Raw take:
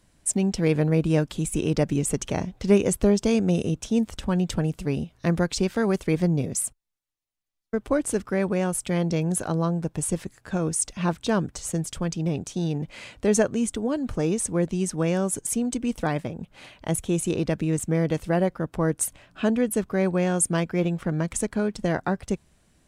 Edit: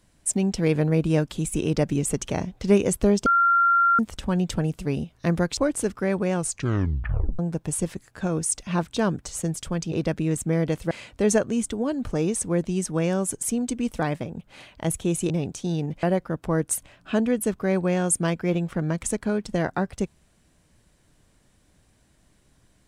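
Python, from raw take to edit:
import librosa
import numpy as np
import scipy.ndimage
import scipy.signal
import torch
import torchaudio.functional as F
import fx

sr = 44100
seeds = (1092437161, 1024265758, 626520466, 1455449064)

y = fx.edit(x, sr, fx.bleep(start_s=3.26, length_s=0.73, hz=1380.0, db=-15.5),
    fx.cut(start_s=5.57, length_s=2.3),
    fx.tape_stop(start_s=8.64, length_s=1.05),
    fx.swap(start_s=12.22, length_s=0.73, other_s=17.34, other_length_s=0.99), tone=tone)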